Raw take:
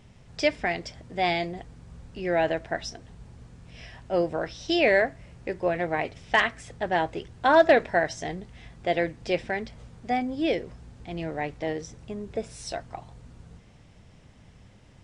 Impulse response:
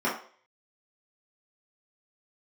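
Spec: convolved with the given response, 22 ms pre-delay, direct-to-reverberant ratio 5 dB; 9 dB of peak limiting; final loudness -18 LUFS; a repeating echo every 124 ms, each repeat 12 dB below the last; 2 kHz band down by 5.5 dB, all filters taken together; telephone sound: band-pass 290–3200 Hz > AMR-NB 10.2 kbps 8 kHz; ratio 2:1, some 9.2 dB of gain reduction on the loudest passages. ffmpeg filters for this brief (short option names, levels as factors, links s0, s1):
-filter_complex "[0:a]equalizer=f=2000:t=o:g=-6,acompressor=threshold=0.0282:ratio=2,alimiter=level_in=1.19:limit=0.0631:level=0:latency=1,volume=0.841,aecho=1:1:124|248|372:0.251|0.0628|0.0157,asplit=2[s0][s1];[1:a]atrim=start_sample=2205,adelay=22[s2];[s1][s2]afir=irnorm=-1:irlink=0,volume=0.133[s3];[s0][s3]amix=inputs=2:normalize=0,highpass=290,lowpass=3200,volume=8.91" -ar 8000 -c:a libopencore_amrnb -b:a 10200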